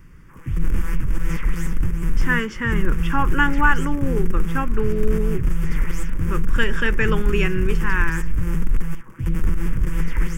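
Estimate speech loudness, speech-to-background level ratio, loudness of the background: -24.0 LUFS, 2.0 dB, -26.0 LUFS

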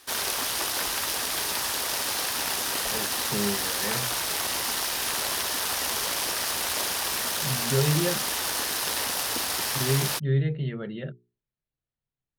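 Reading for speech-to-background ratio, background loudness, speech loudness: -3.5 dB, -26.0 LUFS, -29.5 LUFS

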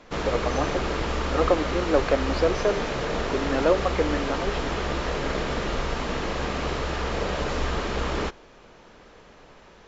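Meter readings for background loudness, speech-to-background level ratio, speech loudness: -28.0 LUFS, 1.0 dB, -27.0 LUFS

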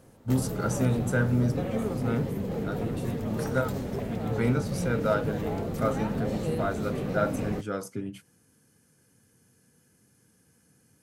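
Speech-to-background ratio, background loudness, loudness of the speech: 1.5 dB, -32.5 LUFS, -31.0 LUFS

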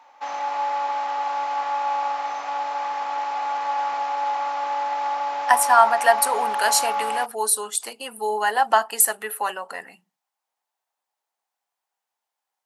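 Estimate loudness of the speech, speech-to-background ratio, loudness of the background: -21.0 LUFS, 4.5 dB, -25.5 LUFS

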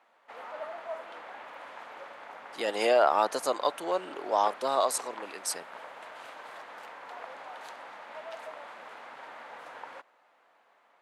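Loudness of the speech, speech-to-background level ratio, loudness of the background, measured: -28.5 LUFS, 15.5 dB, -44.0 LUFS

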